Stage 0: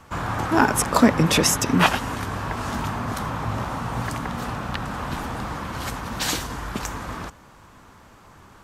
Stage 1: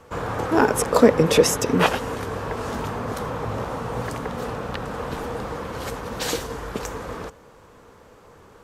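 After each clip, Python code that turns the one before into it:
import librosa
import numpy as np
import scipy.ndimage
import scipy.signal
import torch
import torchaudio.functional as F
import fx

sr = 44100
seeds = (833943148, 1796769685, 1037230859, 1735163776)

y = fx.peak_eq(x, sr, hz=470.0, db=14.5, octaves=0.53)
y = F.gain(torch.from_numpy(y), -3.0).numpy()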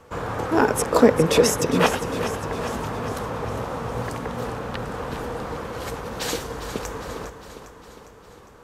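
y = fx.echo_feedback(x, sr, ms=405, feedback_pct=59, wet_db=-11)
y = F.gain(torch.from_numpy(y), -1.0).numpy()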